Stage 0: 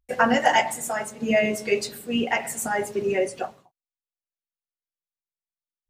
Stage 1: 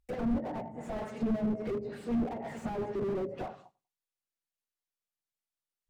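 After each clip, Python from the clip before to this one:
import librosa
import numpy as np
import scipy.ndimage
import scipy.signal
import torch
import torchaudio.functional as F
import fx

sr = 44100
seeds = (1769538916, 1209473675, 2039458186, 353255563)

y = fx.echo_feedback(x, sr, ms=96, feedback_pct=28, wet_db=-23.5)
y = fx.env_lowpass_down(y, sr, base_hz=310.0, full_db=-19.5)
y = fx.slew_limit(y, sr, full_power_hz=11.0)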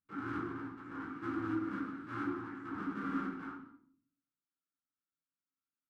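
y = fx.cycle_switch(x, sr, every=2, mode='inverted')
y = fx.double_bandpass(y, sr, hz=610.0, octaves=2.3)
y = fx.room_shoebox(y, sr, seeds[0], volume_m3=620.0, walls='furnished', distance_m=5.6)
y = F.gain(torch.from_numpy(y), -2.5).numpy()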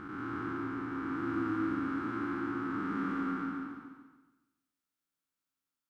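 y = fx.spec_blur(x, sr, span_ms=554.0)
y = fx.echo_feedback(y, sr, ms=140, feedback_pct=41, wet_db=-8)
y = F.gain(torch.from_numpy(y), 6.0).numpy()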